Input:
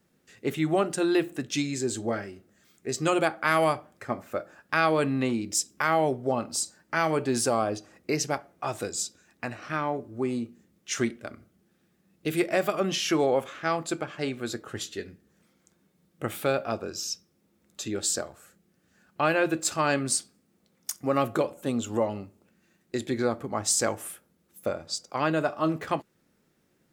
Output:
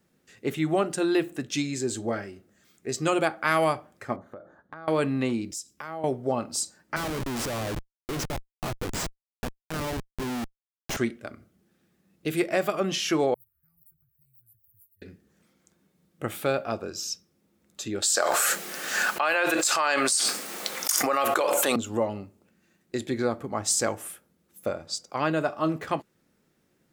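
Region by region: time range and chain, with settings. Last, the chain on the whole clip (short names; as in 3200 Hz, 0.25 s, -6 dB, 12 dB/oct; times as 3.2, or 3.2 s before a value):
4.16–4.88 running mean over 17 samples + compressor 16:1, threshold -37 dBFS
5.51–6.04 dynamic EQ 2200 Hz, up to -5 dB, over -40 dBFS, Q 1 + compressor 3:1, threshold -35 dBFS + three-band expander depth 40%
6.96–10.97 LPF 9100 Hz + Schmitt trigger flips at -31 dBFS
13.34–15.02 inverse Chebyshev band-stop 260–6900 Hz, stop band 60 dB + tilt +3 dB/oct + three-band squash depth 100%
18.02–21.76 HPF 730 Hz + fast leveller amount 100%
whole clip: dry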